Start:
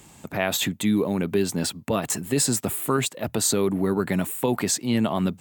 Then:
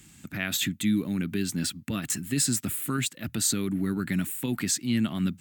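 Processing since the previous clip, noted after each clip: high-order bell 660 Hz -14.5 dB; trim -2.5 dB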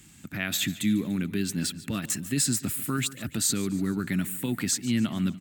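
feedback delay 145 ms, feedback 50%, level -17.5 dB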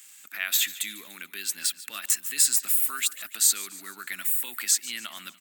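high-pass 1.2 kHz 12 dB/octave; treble shelf 11 kHz +12 dB; trim +2 dB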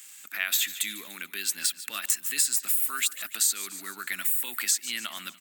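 hum notches 50/100/150 Hz; compression 3:1, threshold -25 dBFS, peak gain reduction 7.5 dB; trim +2.5 dB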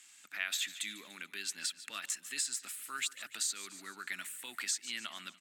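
low-pass 7.4 kHz 12 dB/octave; trim -7 dB

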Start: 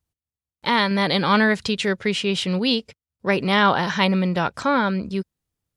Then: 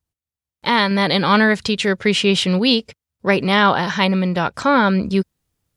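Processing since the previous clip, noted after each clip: level rider gain up to 11 dB; trim -1 dB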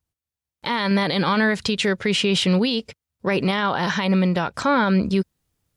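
peak limiter -12 dBFS, peak gain reduction 10 dB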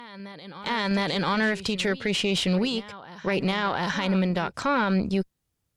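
reverse echo 713 ms -16 dB; Chebyshev shaper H 2 -14 dB, 5 -44 dB, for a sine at -10.5 dBFS; trim -5 dB

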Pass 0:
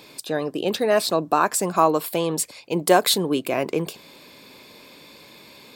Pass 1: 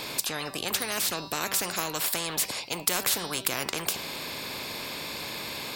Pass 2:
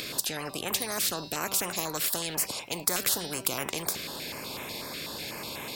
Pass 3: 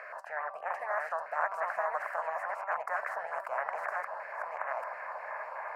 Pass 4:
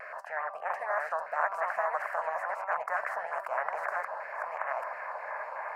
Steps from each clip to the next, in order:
de-hum 194.1 Hz, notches 31; spectrum-flattening compressor 4:1; trim -1.5 dB
upward compressor, threshold -36 dBFS; step-sequenced notch 8.1 Hz 890–4600 Hz
chunks repeated in reverse 692 ms, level -2 dB; elliptic band-pass 620–1800 Hz, stop band 40 dB; trim +4 dB
vibrato 0.7 Hz 25 cents; trim +2 dB

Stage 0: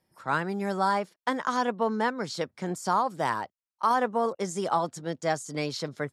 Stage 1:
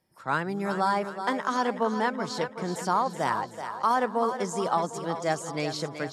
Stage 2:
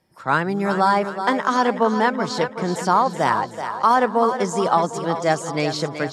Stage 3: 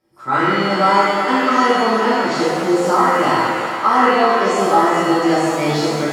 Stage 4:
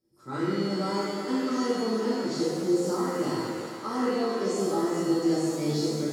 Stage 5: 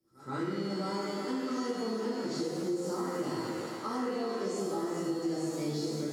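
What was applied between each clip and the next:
two-band feedback delay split 390 Hz, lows 193 ms, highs 376 ms, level -9 dB
treble shelf 11 kHz -10.5 dB; trim +8 dB
small resonant body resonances 330/1300 Hz, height 12 dB, ringing for 50 ms; pitch-shifted reverb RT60 1.4 s, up +7 st, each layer -8 dB, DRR -9 dB; trim -8 dB
high-order bell 1.4 kHz -13 dB 2.7 oct; trim -7.5 dB
compression 3:1, threshold -30 dBFS, peak gain reduction 8.5 dB; pre-echo 124 ms -19.5 dB; trim -1.5 dB

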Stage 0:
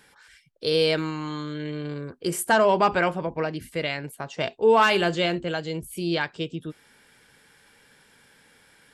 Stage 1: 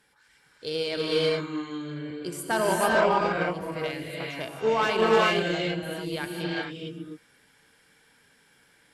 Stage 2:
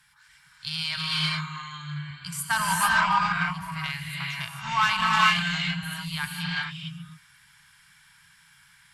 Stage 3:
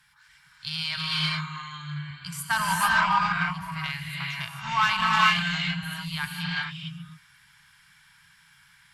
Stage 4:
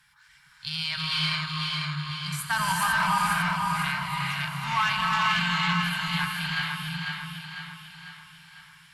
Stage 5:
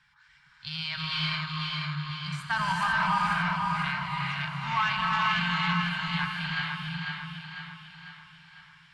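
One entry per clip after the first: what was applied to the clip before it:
gated-style reverb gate 470 ms rising, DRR -3.5 dB; Chebyshev shaper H 7 -29 dB, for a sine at -3.5 dBFS; trim -6.5 dB
elliptic band-stop 160–1000 Hz, stop band 70 dB; trim +5.5 dB
peaking EQ 8.9 kHz -4.5 dB 0.81 oct
peak limiter -15.5 dBFS, peak gain reduction 8 dB; on a send: two-band feedback delay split 440 Hz, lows 361 ms, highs 498 ms, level -4 dB
distance through air 120 m; trim -1 dB

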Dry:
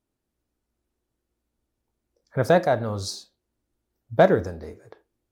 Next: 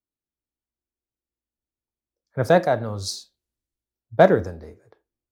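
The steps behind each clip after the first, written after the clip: three bands expanded up and down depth 40%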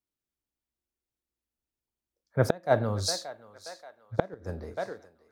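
thinning echo 580 ms, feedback 55%, high-pass 600 Hz, level -17 dB; inverted gate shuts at -7 dBFS, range -29 dB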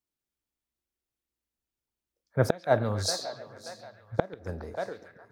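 repeats whose band climbs or falls 138 ms, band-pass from 3.1 kHz, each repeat -0.7 oct, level -8 dB

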